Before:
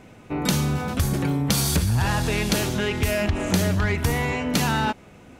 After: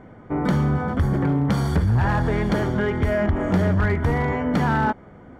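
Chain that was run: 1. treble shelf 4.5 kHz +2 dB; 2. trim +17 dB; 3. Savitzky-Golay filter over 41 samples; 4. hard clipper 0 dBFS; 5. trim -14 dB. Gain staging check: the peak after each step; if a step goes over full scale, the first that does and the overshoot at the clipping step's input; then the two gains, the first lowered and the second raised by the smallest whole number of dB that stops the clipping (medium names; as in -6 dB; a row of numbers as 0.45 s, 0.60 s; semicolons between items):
-9.5 dBFS, +7.5 dBFS, +6.5 dBFS, 0.0 dBFS, -14.0 dBFS; step 2, 6.5 dB; step 2 +10 dB, step 5 -7 dB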